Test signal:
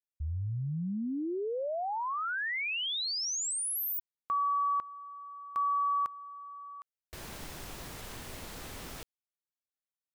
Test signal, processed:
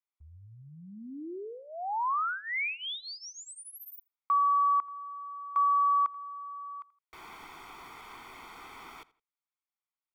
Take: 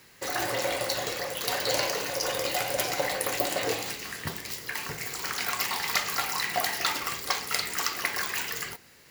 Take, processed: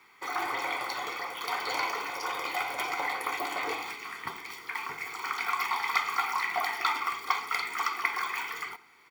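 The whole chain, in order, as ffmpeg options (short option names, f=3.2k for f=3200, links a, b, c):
-filter_complex "[0:a]acrossover=split=360 2900:gain=0.0708 1 0.158[a][b][c];[a][b][c]amix=inputs=3:normalize=0,aecho=1:1:0.9:0.85,asplit=2[d][e];[e]adelay=83,lowpass=f=4.8k:p=1,volume=-20dB,asplit=2[f][g];[g]adelay=83,lowpass=f=4.8k:p=1,volume=0.31[h];[d][f][h]amix=inputs=3:normalize=0"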